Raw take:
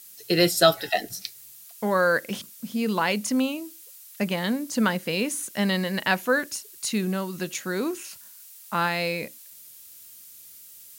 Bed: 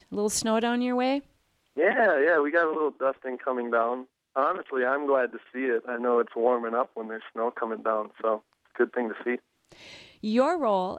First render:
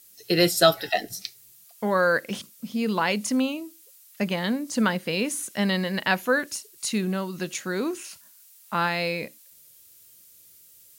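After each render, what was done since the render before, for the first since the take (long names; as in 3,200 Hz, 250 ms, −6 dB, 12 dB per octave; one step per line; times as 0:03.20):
noise reduction from a noise print 6 dB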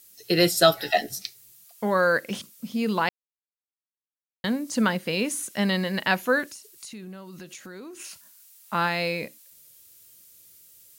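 0:00.79–0:01.19: double-tracking delay 14 ms −3 dB
0:03.09–0:04.44: silence
0:06.51–0:08.00: downward compressor 4 to 1, threshold −40 dBFS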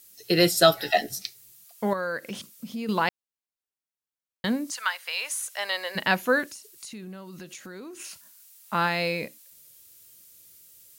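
0:01.93–0:02.89: downward compressor 2 to 1, threshold −34 dBFS
0:04.70–0:05.95: high-pass filter 1,100 Hz → 500 Hz 24 dB per octave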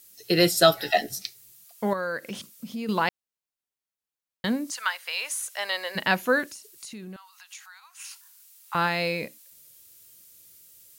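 0:07.16–0:08.75: Chebyshev high-pass filter 800 Hz, order 6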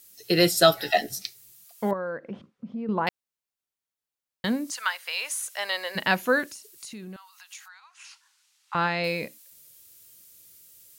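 0:01.91–0:03.07: low-pass filter 1,100 Hz
0:07.68–0:09.04: high-frequency loss of the air 100 metres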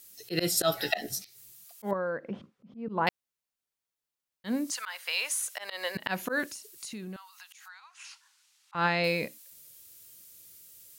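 volume swells 142 ms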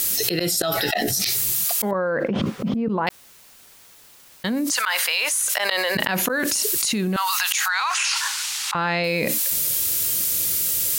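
envelope flattener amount 100%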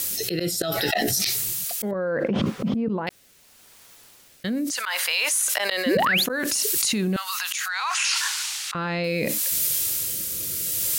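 rotating-speaker cabinet horn 0.7 Hz
0:05.86–0:06.24: sound drawn into the spectrogram rise 220–4,900 Hz −21 dBFS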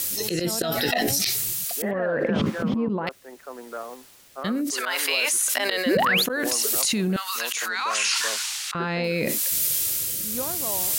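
mix in bed −10.5 dB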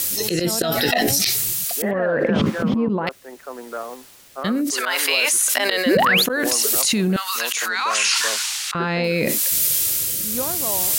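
level +4.5 dB
brickwall limiter −3 dBFS, peak gain reduction 2.5 dB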